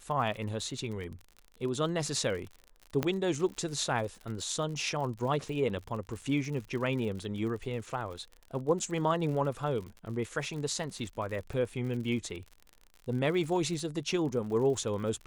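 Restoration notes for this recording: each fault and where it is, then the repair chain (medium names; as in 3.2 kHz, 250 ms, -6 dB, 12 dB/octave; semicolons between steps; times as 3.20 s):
crackle 58 per s -39 dBFS
3.03 s: pop -15 dBFS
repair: de-click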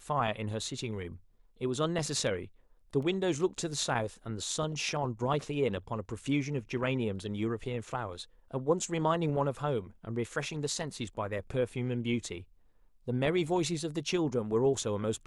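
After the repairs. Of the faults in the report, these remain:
3.03 s: pop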